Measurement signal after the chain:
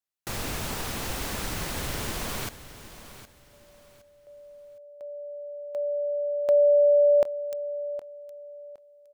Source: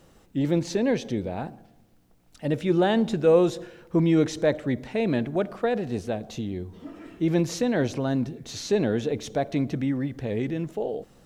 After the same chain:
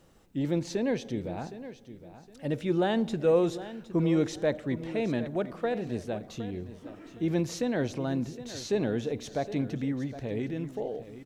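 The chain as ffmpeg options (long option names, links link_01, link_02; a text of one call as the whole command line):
ffmpeg -i in.wav -af "aecho=1:1:764|1528|2292:0.2|0.0559|0.0156,volume=-5dB" out.wav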